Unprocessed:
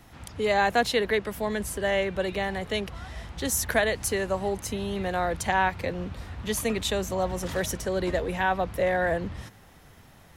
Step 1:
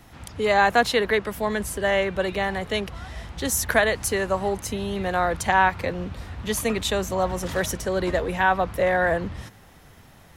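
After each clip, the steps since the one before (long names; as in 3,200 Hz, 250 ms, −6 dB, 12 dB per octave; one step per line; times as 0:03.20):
dynamic equaliser 1,200 Hz, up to +5 dB, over −38 dBFS, Q 1.4
level +2.5 dB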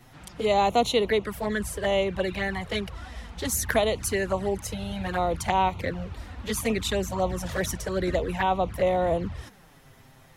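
flanger swept by the level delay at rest 8.8 ms, full sweep at −19 dBFS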